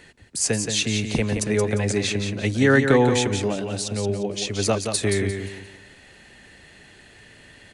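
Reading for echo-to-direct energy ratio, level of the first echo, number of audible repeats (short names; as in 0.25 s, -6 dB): -6.0 dB, -6.5 dB, 3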